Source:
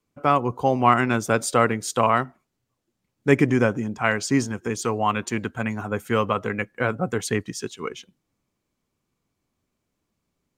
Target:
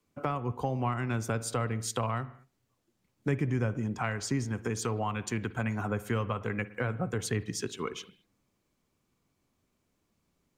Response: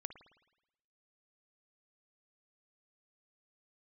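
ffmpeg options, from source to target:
-filter_complex "[0:a]acrossover=split=120[a][b];[b]acompressor=threshold=-32dB:ratio=6[c];[a][c]amix=inputs=2:normalize=0,asplit=2[d][e];[1:a]atrim=start_sample=2205,afade=t=out:st=0.29:d=0.01,atrim=end_sample=13230[f];[e][f]afir=irnorm=-1:irlink=0,volume=3.5dB[g];[d][g]amix=inputs=2:normalize=0,volume=-4.5dB"

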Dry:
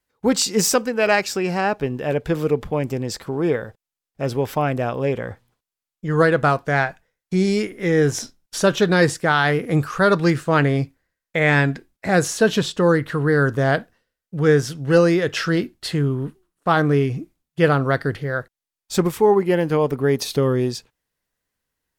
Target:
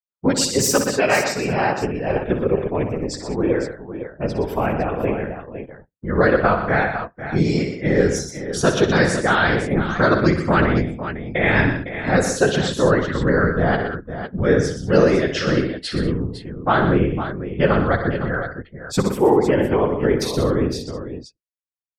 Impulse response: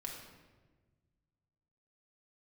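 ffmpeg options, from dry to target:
-filter_complex "[0:a]afftdn=nr=34:nf=-39,afftfilt=real='hypot(re,im)*cos(2*PI*random(0))':imag='hypot(re,im)*sin(2*PI*random(1))':win_size=512:overlap=0.75,asplit=2[a][b];[b]aecho=0:1:61|121|188|507:0.316|0.355|0.15|0.299[c];[a][c]amix=inputs=2:normalize=0,volume=5.5dB"

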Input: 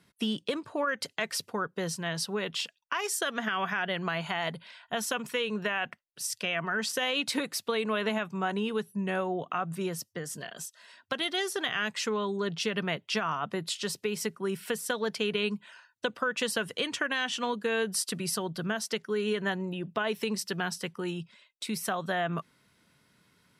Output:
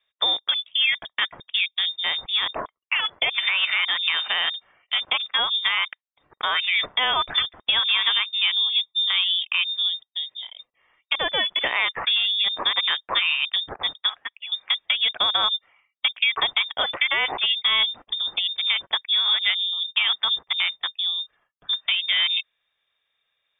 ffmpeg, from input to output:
-filter_complex "[0:a]asettb=1/sr,asplit=3[a][b][c];[a]atrim=end=14.094[d];[b]atrim=start=14.09:end=14.52,asetpts=PTS-STARTPTS,afade=t=in:d=0.004:c=qsin,afade=t=out:st=0.426:d=0.004:c=qsin,highpass=870[e];[c]atrim=start=14.516[f];[d][e]acrossfade=d=0.004:c1=hsin:c2=qsin[g];[g][f]acrossfade=d=0.004:c1=qsin:c2=hsin,afwtdn=0.0112,lowpass=f=3.2k:t=q:w=0.5098,lowpass=f=3.2k:t=q:w=0.6013,lowpass=f=3.2k:t=q:w=0.9,lowpass=f=3.2k:t=q:w=2.563,afreqshift=-3800,volume=8.5dB"

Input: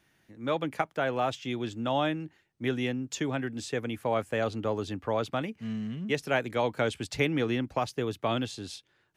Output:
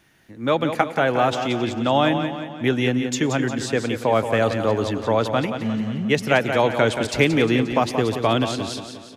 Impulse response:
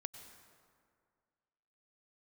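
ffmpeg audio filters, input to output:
-filter_complex "[0:a]aecho=1:1:177|354|531|708|885|1062:0.376|0.188|0.094|0.047|0.0235|0.0117,asplit=2[a][b];[1:a]atrim=start_sample=2205[c];[b][c]afir=irnorm=-1:irlink=0,volume=-5dB[d];[a][d]amix=inputs=2:normalize=0,volume=6.5dB"

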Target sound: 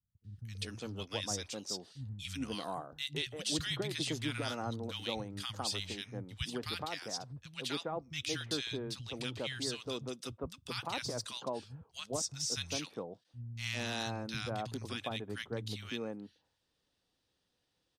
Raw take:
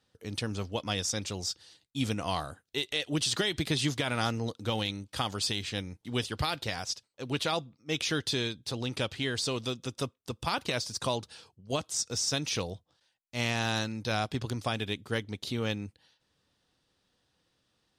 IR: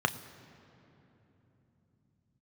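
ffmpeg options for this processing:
-filter_complex "[0:a]acrossover=split=160|1300[a][b][c];[c]adelay=240[d];[b]adelay=400[e];[a][e][d]amix=inputs=3:normalize=0,volume=-5.5dB"

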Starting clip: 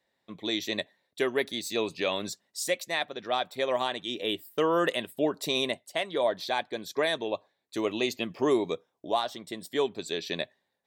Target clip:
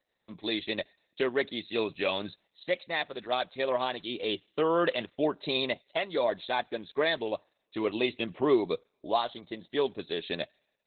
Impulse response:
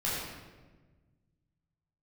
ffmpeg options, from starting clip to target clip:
-filter_complex "[0:a]asplit=2[a][b];[b]aderivative[c];[1:a]atrim=start_sample=2205,lowpass=3.5k[d];[c][d]afir=irnorm=-1:irlink=0,volume=-26.5dB[e];[a][e]amix=inputs=2:normalize=0" -ar 48000 -c:a libopus -b:a 8k

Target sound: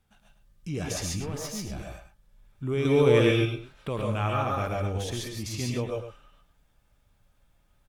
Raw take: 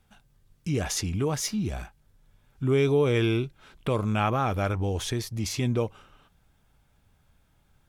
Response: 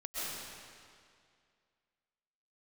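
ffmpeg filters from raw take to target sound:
-filter_complex "[0:a]asettb=1/sr,asplit=3[a][b][c];[a]atrim=end=2.854[d];[b]atrim=start=2.85:end=3.31,asetpts=PTS-STARTPTS,afade=t=in:d=0.004:c=qsin,afade=t=out:st=0.456:d=0.004:c=qsin,acontrast=76[e];[c]atrim=start=3.306[f];[d][e]acrossfade=d=0.004:c1=hsin:c2=qsin[g];[g][f]acrossfade=d=0.004:c1=qsin:c2=hsin,asplit=2[h][i];[i]adelay=105,volume=-9dB,highshelf=f=4k:g=-2.36[j];[h][j]amix=inputs=2:normalize=0,asettb=1/sr,asplit=3[k][l][m];[k]atrim=end=1.204[n];[l]atrim=start=1.2:end=1.69,asetpts=PTS-STARTPTS,afade=t=in:d=0.004:c=qsin,afade=t=out:st=0.486:d=0.004:c=qsin,aeval=exprs='(tanh(17.8*val(0)+0.55)-tanh(0.55))/17.8':c=same[o];[m]atrim=start=1.686[p];[n][o]acrossfade=d=0.004:c1=hsin:c2=qsin[q];[q][p]acrossfade=d=0.004:c1=qsin:c2=hsin[r];[1:a]atrim=start_sample=2205,atrim=end_sample=6174,asetrate=41454,aresample=44100[s];[r][s]afir=irnorm=-1:irlink=0"

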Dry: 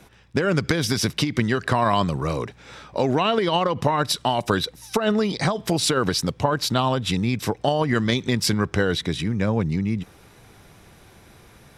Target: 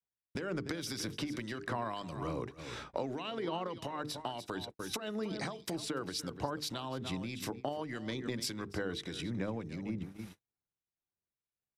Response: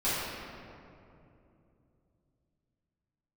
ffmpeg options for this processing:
-filter_complex "[0:a]aecho=1:1:293:0.2,adynamicequalizer=threshold=0.01:dfrequency=310:dqfactor=3.4:tfrequency=310:tqfactor=3.4:attack=5:release=100:ratio=0.375:range=3.5:mode=boostabove:tftype=bell,acrossover=split=230[a][b];[a]asoftclip=type=tanh:threshold=-23.5dB[c];[c][b]amix=inputs=2:normalize=0,bandreject=f=50:t=h:w=6,bandreject=f=100:t=h:w=6,bandreject=f=150:t=h:w=6,bandreject=f=200:t=h:w=6,bandreject=f=250:t=h:w=6,bandreject=f=300:t=h:w=6,bandreject=f=350:t=h:w=6,bandreject=f=400:t=h:w=6,bandreject=f=450:t=h:w=6,acompressor=threshold=-35dB:ratio=6,agate=range=-51dB:threshold=-42dB:ratio=16:detection=peak,acrossover=split=2100[d][e];[d]aeval=exprs='val(0)*(1-0.5/2+0.5/2*cos(2*PI*1.7*n/s))':c=same[f];[e]aeval=exprs='val(0)*(1-0.5/2-0.5/2*cos(2*PI*1.7*n/s))':c=same[g];[f][g]amix=inputs=2:normalize=0,volume=1dB"

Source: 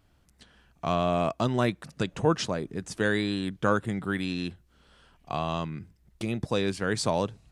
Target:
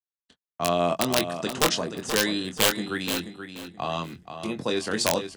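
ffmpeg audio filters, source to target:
-filter_complex "[0:a]bandreject=f=60:t=h:w=6,bandreject=f=120:t=h:w=6,bandreject=f=180:t=h:w=6,agate=range=-53dB:threshold=-52dB:ratio=16:detection=peak,highpass=f=73:p=1,highshelf=f=6.9k:g=-5.5,bandreject=f=2.3k:w=15,acrossover=split=170[a][b];[a]acompressor=threshold=-48dB:ratio=6[c];[c][b]amix=inputs=2:normalize=0,atempo=1.4,aeval=exprs='(mod(5.62*val(0)+1,2)-1)/5.62':c=same,asplit=2[d][e];[e]adelay=23,volume=-7dB[f];[d][f]amix=inputs=2:normalize=0,asplit=2[g][h];[h]aecho=0:1:479|958|1437:0.355|0.0923|0.024[i];[g][i]amix=inputs=2:normalize=0,adynamicequalizer=threshold=0.00891:dfrequency=2700:dqfactor=0.7:tfrequency=2700:tqfactor=0.7:attack=5:release=100:ratio=0.375:range=3.5:mode=boostabove:tftype=highshelf,volume=1dB"

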